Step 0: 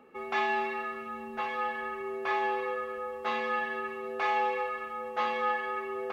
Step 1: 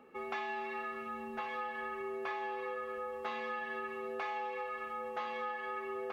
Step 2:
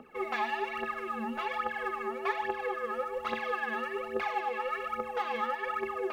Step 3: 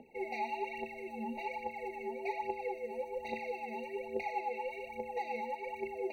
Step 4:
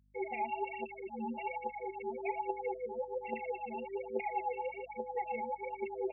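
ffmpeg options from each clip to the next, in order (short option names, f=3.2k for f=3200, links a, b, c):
-af "acompressor=threshold=-34dB:ratio=6,volume=-2dB"
-af "aphaser=in_gain=1:out_gain=1:delay=4.9:decay=0.74:speed=1.2:type=triangular,volume=2.5dB"
-af "afftfilt=real='re*eq(mod(floor(b*sr/1024/940),2),0)':imag='im*eq(mod(floor(b*sr/1024/940),2),0)':win_size=1024:overlap=0.75,volume=-3.5dB"
-af "afftfilt=real='re*gte(hypot(re,im),0.0224)':imag='im*gte(hypot(re,im),0.0224)':win_size=1024:overlap=0.75,aeval=exprs='val(0)+0.000355*(sin(2*PI*50*n/s)+sin(2*PI*2*50*n/s)/2+sin(2*PI*3*50*n/s)/3+sin(2*PI*4*50*n/s)/4+sin(2*PI*5*50*n/s)/5)':c=same,volume=1dB"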